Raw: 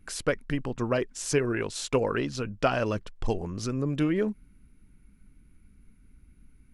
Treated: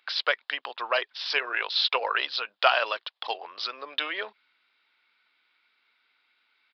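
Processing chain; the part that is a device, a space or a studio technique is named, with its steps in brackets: musical greeting card (resampled via 11.025 kHz; high-pass 710 Hz 24 dB/octave; peaking EQ 3.6 kHz +11.5 dB 0.55 oct); trim +6.5 dB

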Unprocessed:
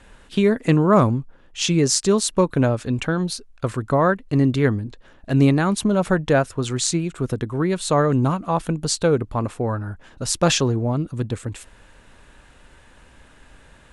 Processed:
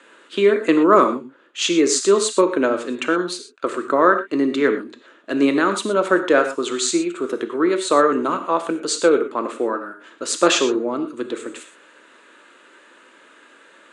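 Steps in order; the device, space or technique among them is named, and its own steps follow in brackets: high-pass 300 Hz 24 dB/octave; car door speaker (cabinet simulation 84–8300 Hz, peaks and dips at 100 Hz -8 dB, 330 Hz +5 dB, 780 Hz -9 dB, 1.3 kHz +5 dB, 5.4 kHz -8 dB); gated-style reverb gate 140 ms flat, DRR 6.5 dB; trim +3 dB

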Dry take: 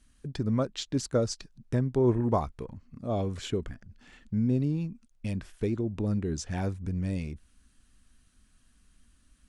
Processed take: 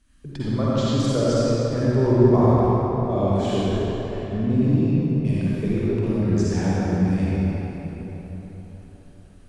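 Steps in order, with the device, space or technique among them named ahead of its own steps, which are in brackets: swimming-pool hall (reverberation RT60 4.4 s, pre-delay 45 ms, DRR -9.5 dB; treble shelf 4.6 kHz -5 dB)

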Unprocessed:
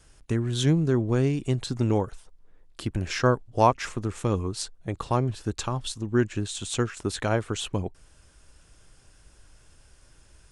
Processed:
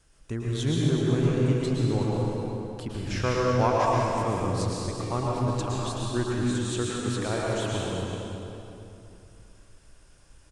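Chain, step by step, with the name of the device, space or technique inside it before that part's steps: cave (delay 375 ms -10.5 dB; reverberation RT60 2.9 s, pre-delay 104 ms, DRR -4.5 dB); trim -6.5 dB

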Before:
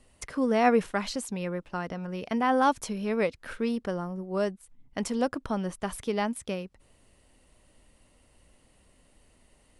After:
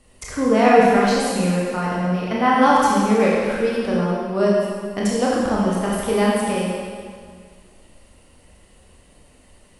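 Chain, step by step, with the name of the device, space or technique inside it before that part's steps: stairwell (reverberation RT60 2.0 s, pre-delay 20 ms, DRR -5.5 dB); trim +4 dB

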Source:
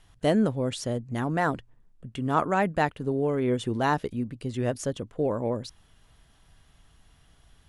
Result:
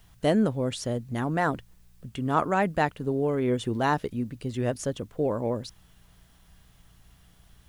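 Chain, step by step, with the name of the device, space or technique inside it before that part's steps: video cassette with head-switching buzz (mains buzz 60 Hz, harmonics 3, -61 dBFS -4 dB/octave; white noise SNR 40 dB)

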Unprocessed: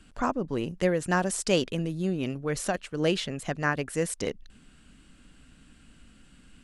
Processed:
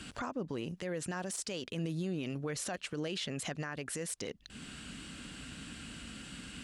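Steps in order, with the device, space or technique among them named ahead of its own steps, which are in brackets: broadcast voice chain (high-pass 72 Hz 12 dB/octave; de-esser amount 55%; compression 4:1, threshold -44 dBFS, peak gain reduction 20.5 dB; peaking EQ 4.1 kHz +5 dB 2.3 oct; peak limiter -38 dBFS, peak gain reduction 11 dB); trim +9.5 dB

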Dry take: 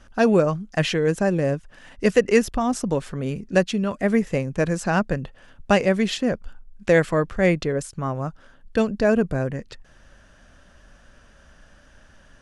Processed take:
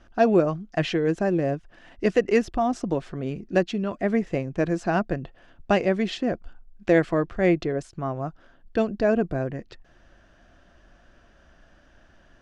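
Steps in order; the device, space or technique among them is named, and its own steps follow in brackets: inside a cardboard box (low-pass 5.1 kHz 12 dB/octave; small resonant body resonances 340/690 Hz, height 9 dB); trim -4.5 dB

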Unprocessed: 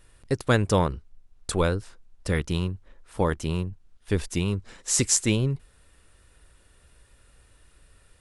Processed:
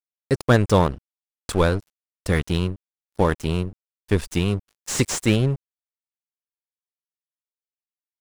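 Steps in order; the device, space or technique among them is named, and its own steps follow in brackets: early transistor amplifier (crossover distortion -38 dBFS; slew-rate limiter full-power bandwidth 190 Hz); trim +5.5 dB

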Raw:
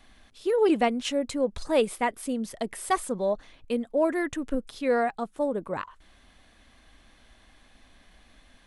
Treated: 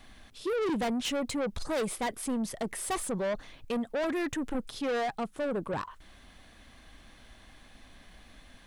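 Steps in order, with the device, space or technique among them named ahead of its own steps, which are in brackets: open-reel tape (saturation -30.5 dBFS, distortion -6 dB; peaking EQ 130 Hz +4 dB 1.03 oct; white noise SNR 47 dB); trim +2.5 dB

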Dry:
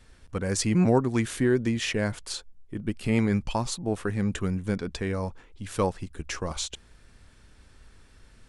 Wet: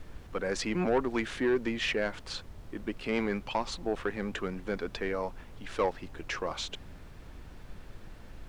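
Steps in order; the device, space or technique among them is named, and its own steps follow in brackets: aircraft cabin announcement (band-pass 360–3600 Hz; saturation -21 dBFS, distortion -14 dB; brown noise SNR 10 dB); trim +1.5 dB

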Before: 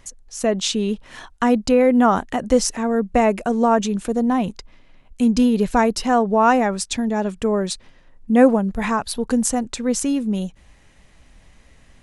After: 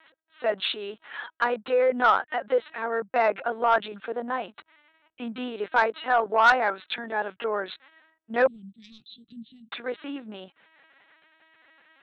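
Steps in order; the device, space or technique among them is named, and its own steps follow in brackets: talking toy (LPC vocoder at 8 kHz pitch kept; high-pass 570 Hz 12 dB/octave; peaking EQ 1.5 kHz +8 dB 0.55 oct; saturation -8.5 dBFS, distortion -16 dB); 8.47–9.72 s: elliptic band-stop 210–4000 Hz, stop band 50 dB; trim -1.5 dB

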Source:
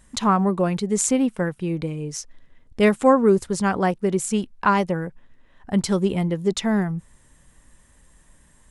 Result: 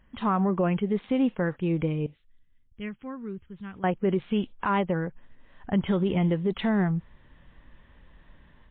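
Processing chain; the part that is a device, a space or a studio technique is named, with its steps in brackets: 2.06–3.84 s: amplifier tone stack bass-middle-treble 6-0-2; low-bitrate web radio (level rider gain up to 7 dB; peak limiter -11 dBFS, peak gain reduction 9 dB; trim -5 dB; MP3 24 kbps 8 kHz)

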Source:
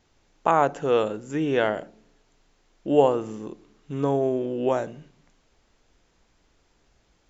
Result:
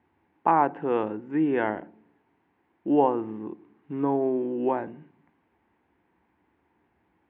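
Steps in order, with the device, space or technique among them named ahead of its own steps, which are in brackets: bass cabinet (cabinet simulation 86–2100 Hz, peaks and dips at 130 Hz -10 dB, 320 Hz +4 dB, 600 Hz -9 dB, 900 Hz +5 dB, 1.3 kHz -7 dB); peaking EQ 460 Hz -5 dB 0.26 oct

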